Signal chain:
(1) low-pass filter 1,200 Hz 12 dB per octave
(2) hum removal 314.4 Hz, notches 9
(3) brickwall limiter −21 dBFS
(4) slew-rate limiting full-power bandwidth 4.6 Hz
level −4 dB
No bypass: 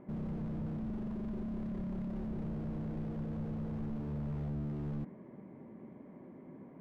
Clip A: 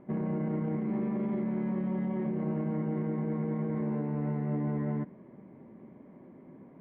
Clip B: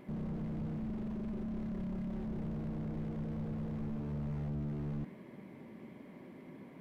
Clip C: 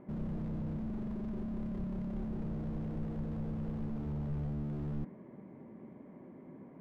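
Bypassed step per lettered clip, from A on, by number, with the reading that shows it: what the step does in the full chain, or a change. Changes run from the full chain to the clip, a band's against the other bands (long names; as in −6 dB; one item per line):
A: 4, change in crest factor −3.0 dB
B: 1, 2 kHz band +2.5 dB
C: 3, average gain reduction 3.5 dB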